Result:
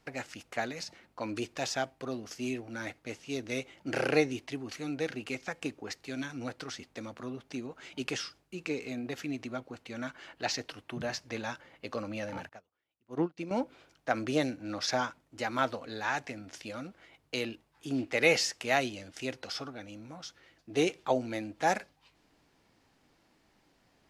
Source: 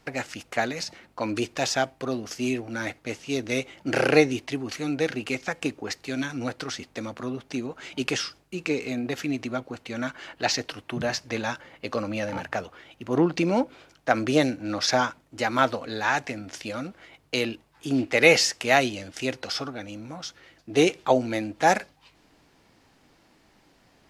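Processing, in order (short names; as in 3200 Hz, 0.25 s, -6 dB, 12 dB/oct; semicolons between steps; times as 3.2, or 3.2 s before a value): 12.49–13.51 upward expander 2.5:1, over -37 dBFS; gain -8 dB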